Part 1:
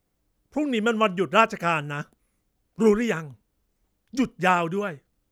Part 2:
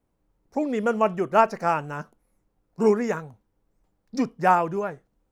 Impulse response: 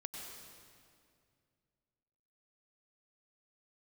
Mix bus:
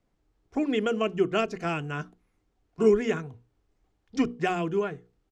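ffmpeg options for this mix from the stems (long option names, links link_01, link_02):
-filter_complex "[0:a]lowpass=frequency=8300:width=0.5412,lowpass=frequency=8300:width=1.3066,bandreject=frequency=60:width_type=h:width=6,bandreject=frequency=120:width_type=h:width=6,bandreject=frequency=180:width_type=h:width=6,bandreject=frequency=240:width_type=h:width=6,bandreject=frequency=300:width_type=h:width=6,bandreject=frequency=360:width_type=h:width=6,bandreject=frequency=420:width_type=h:width=6,bandreject=frequency=480:width_type=h:width=6,volume=0dB[link_01];[1:a]adelay=2.9,volume=-5.5dB[link_02];[link_01][link_02]amix=inputs=2:normalize=0,aemphasis=mode=reproduction:type=cd,acrossover=split=470|3000[link_03][link_04][link_05];[link_04]acompressor=threshold=-32dB:ratio=6[link_06];[link_03][link_06][link_05]amix=inputs=3:normalize=0"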